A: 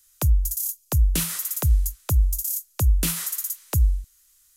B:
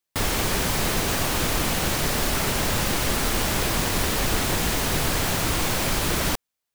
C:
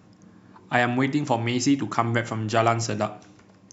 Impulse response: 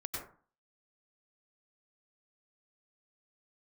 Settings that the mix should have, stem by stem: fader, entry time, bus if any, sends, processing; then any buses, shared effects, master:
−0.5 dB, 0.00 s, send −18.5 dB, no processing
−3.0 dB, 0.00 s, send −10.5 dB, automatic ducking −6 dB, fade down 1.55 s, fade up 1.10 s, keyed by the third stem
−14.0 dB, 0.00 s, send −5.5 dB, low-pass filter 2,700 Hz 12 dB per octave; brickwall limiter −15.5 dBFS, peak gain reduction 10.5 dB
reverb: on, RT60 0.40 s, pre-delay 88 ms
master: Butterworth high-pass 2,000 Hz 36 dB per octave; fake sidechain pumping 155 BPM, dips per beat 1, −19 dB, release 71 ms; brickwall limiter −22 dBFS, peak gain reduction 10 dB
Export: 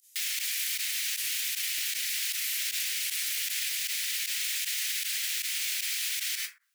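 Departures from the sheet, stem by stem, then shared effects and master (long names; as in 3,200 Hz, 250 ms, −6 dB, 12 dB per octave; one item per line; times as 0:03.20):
stem B −3.0 dB → +4.0 dB
stem C: muted
reverb return +6.5 dB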